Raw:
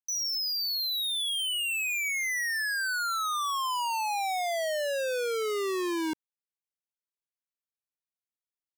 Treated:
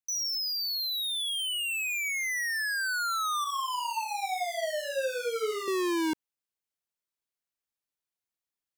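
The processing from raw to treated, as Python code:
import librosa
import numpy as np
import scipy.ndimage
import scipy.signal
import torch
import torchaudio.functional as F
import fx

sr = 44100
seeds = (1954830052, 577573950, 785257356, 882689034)

y = fx.rider(x, sr, range_db=10, speed_s=0.5)
y = fx.chorus_voices(y, sr, voices=4, hz=1.4, base_ms=14, depth_ms=3.0, mix_pct=55, at=(3.44, 5.68))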